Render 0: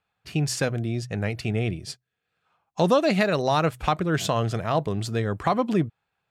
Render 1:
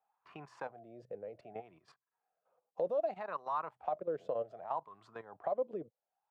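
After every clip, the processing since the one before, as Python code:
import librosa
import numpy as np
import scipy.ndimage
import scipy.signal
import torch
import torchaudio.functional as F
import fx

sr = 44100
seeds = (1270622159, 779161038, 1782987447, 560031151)

y = fx.level_steps(x, sr, step_db=12)
y = fx.wah_lfo(y, sr, hz=0.65, low_hz=490.0, high_hz=1100.0, q=7.2)
y = fx.band_squash(y, sr, depth_pct=40)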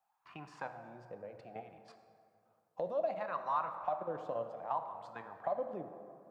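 y = fx.peak_eq(x, sr, hz=440.0, db=-9.5, octaves=0.74)
y = fx.rev_plate(y, sr, seeds[0], rt60_s=2.5, hf_ratio=0.5, predelay_ms=0, drr_db=7.0)
y = F.gain(torch.from_numpy(y), 2.5).numpy()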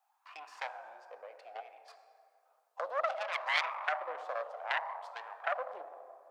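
y = fx.self_delay(x, sr, depth_ms=0.44)
y = scipy.signal.sosfilt(scipy.signal.butter(4, 620.0, 'highpass', fs=sr, output='sos'), y)
y = F.gain(torch.from_numpy(y), 4.5).numpy()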